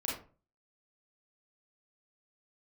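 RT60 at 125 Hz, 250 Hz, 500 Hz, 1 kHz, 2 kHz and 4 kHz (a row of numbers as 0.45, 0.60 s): 0.50, 0.45, 0.40, 0.35, 0.30, 0.20 s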